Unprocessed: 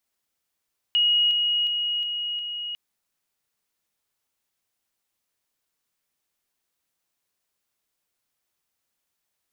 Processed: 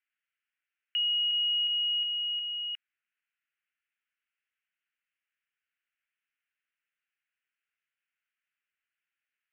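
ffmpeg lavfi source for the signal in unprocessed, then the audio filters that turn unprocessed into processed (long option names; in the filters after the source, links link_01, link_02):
-f lavfi -i "aevalsrc='pow(10,(-17-3*floor(t/0.36))/20)*sin(2*PI*2890*t)':duration=1.8:sample_rate=44100"
-af "alimiter=limit=-22dB:level=0:latency=1,asuperpass=centerf=2000:order=8:qfactor=1.3"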